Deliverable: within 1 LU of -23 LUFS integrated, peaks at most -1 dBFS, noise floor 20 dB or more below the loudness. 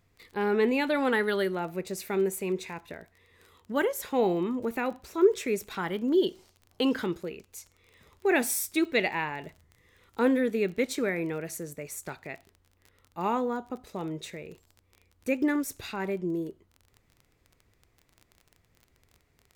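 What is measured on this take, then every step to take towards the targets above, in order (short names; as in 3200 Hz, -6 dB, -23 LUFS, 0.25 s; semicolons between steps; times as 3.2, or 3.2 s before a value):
ticks 25/s; loudness -29.0 LUFS; peak -11.5 dBFS; loudness target -23.0 LUFS
-> de-click; gain +6 dB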